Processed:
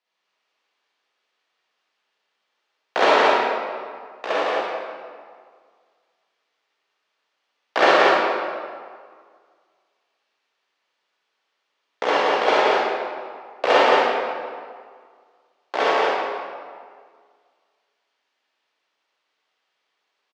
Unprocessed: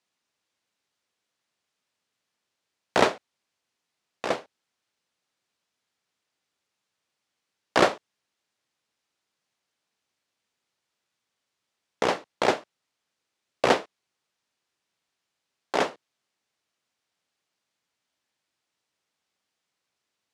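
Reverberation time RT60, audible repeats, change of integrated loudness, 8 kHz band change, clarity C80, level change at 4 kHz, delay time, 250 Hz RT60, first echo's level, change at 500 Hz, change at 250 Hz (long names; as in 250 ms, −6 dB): 1.9 s, 1, +6.0 dB, −1.0 dB, −4.5 dB, +7.5 dB, 176 ms, 1.8 s, −3.0 dB, +8.5 dB, +3.0 dB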